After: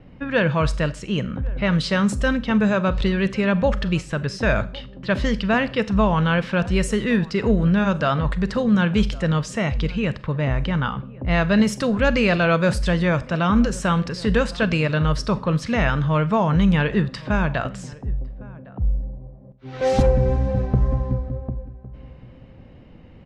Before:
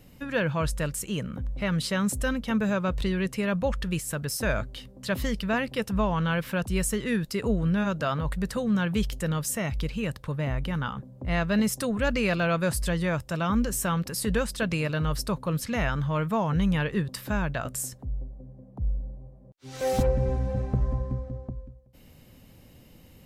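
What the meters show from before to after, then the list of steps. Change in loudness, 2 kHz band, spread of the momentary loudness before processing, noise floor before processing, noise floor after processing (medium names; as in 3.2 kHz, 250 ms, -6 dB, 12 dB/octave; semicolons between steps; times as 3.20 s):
+7.0 dB, +7.0 dB, 8 LU, -52 dBFS, -44 dBFS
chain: level-controlled noise filter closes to 1.9 kHz, open at -20.5 dBFS; low-pass 5.6 kHz 12 dB/octave; wow and flutter 23 cents; echo from a far wall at 190 m, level -21 dB; Schroeder reverb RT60 0.39 s, combs from 30 ms, DRR 15 dB; trim +7 dB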